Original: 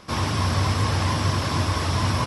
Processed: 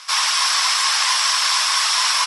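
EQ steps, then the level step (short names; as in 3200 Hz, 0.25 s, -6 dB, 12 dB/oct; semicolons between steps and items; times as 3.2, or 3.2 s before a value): HPF 1000 Hz 24 dB/oct; LPF 10000 Hz 24 dB/oct; high shelf 3100 Hz +12 dB; +6.5 dB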